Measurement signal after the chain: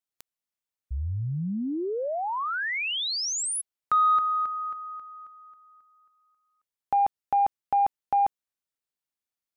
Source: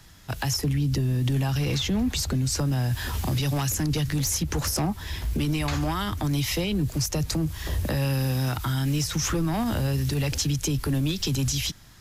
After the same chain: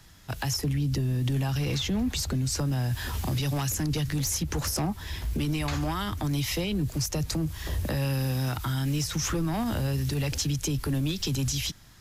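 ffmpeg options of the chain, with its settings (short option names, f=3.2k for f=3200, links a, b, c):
-af "acontrast=66,volume=-9dB"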